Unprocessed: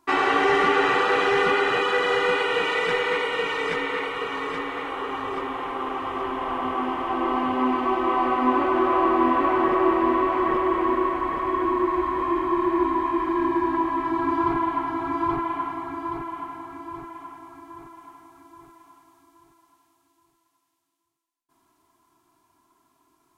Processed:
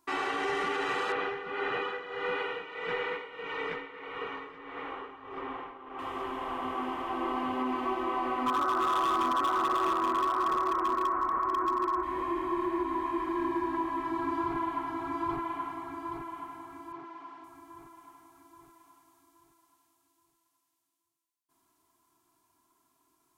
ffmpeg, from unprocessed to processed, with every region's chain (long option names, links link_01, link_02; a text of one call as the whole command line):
ffmpeg -i in.wav -filter_complex "[0:a]asettb=1/sr,asplit=3[link_01][link_02][link_03];[link_01]atrim=end=1.124[link_04];[link_02]atrim=start=1.12:end=5.99,asetpts=PTS-STARTPTS,afade=type=in:duration=0.004:curve=qsin,afade=type=out:start_time=4.866:duration=0.004:curve=qsin,lowpass=2700,tremolo=f=1.6:d=0.75[link_05];[link_03]atrim=start=5.986[link_06];[link_04][link_05]acrossfade=duration=0.004:curve1=hsin:curve2=qsin[link_07];[link_07][link_06]acrossfade=duration=0.004:curve1=qsin:curve2=hsin,asettb=1/sr,asplit=3[link_08][link_09][link_10];[link_08]atrim=end=8.464[link_11];[link_09]atrim=start=8.46:end=12.03,asetpts=PTS-STARTPTS,afade=type=in:duration=0.004:curve=qsin,afade=type=out:start_time=3.566:duration=0.004:curve=qsin,lowpass=frequency=1300:width_type=q:width=6.5,volume=10dB,asoftclip=hard,volume=-10dB[link_12];[link_10]atrim=start=12.026[link_13];[link_11][link_12]acrossfade=duration=0.004:curve1=hsin:curve2=qsin[link_14];[link_14][link_13]acrossfade=duration=0.004:curve1=qsin:curve2=hsin,asettb=1/sr,asplit=3[link_15][link_16][link_17];[link_15]atrim=end=16.924[link_18];[link_16]atrim=start=16.92:end=17.44,asetpts=PTS-STARTPTS,afade=type=in:duration=0.004:curve=qsin,afade=type=out:start_time=0.516:duration=0.004:curve=qsin,aeval=exprs='val(0)+0.5*0.00501*sgn(val(0))':channel_layout=same,highpass=210,lowpass=2900[link_19];[link_17]atrim=start=17.436[link_20];[link_18][link_19]acrossfade=duration=0.004:curve1=hsin:curve2=qsin[link_21];[link_21][link_20]acrossfade=duration=0.004:curve1=qsin:curve2=hsin,highshelf=frequency=5000:gain=8.5,alimiter=limit=-14dB:level=0:latency=1:release=108,volume=-8dB" out.wav